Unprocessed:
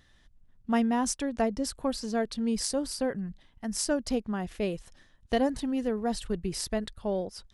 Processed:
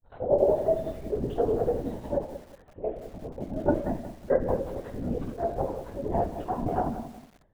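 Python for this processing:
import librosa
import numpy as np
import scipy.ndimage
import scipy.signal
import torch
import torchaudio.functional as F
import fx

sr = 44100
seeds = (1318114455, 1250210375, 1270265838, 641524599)

p1 = np.flip(x).copy()
p2 = fx.tilt_eq(p1, sr, slope=-3.5)
p3 = fx.rider(p2, sr, range_db=4, speed_s=0.5)
p4 = fx.transient(p3, sr, attack_db=-11, sustain_db=10)
p5 = fx.bandpass_q(p4, sr, hz=650.0, q=1.8)
p6 = fx.granulator(p5, sr, seeds[0], grain_ms=90.0, per_s=11.0, spray_ms=100.0, spread_st=0)
p7 = p6 + fx.echo_single(p6, sr, ms=159, db=-20.5, dry=0)
p8 = fx.room_shoebox(p7, sr, seeds[1], volume_m3=50.0, walls='mixed', distance_m=0.95)
p9 = fx.lpc_vocoder(p8, sr, seeds[2], excitation='whisper', order=16)
p10 = fx.echo_crushed(p9, sr, ms=182, feedback_pct=35, bits=8, wet_db=-12.5)
y = p10 * librosa.db_to_amplitude(3.5)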